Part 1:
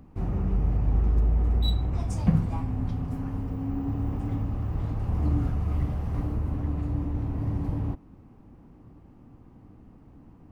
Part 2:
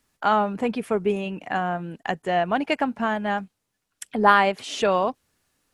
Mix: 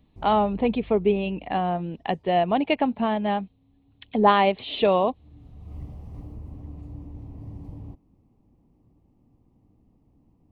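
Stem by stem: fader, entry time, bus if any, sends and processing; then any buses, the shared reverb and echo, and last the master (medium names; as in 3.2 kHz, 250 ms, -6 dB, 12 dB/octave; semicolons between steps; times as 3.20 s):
-10.5 dB, 0.00 s, no send, auto duck -22 dB, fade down 1.70 s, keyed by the second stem
+2.5 dB, 0.00 s, no send, steep low-pass 4.1 kHz 96 dB/octave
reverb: none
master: peaking EQ 1.5 kHz -15 dB 0.62 oct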